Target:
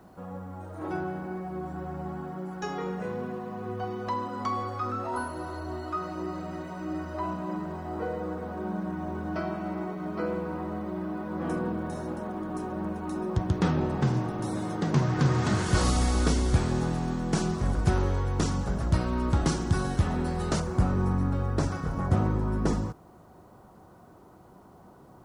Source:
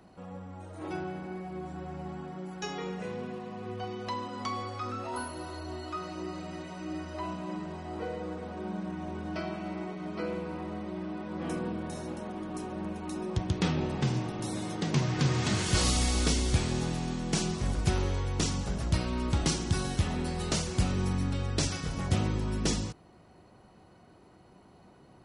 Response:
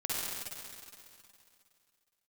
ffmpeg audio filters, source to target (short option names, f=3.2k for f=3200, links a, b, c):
-af "asetnsamples=n=441:p=0,asendcmd='20.6 highshelf g -13.5',highshelf=f=1.9k:t=q:w=1.5:g=-7,acrusher=bits=11:mix=0:aa=0.000001,volume=3.5dB"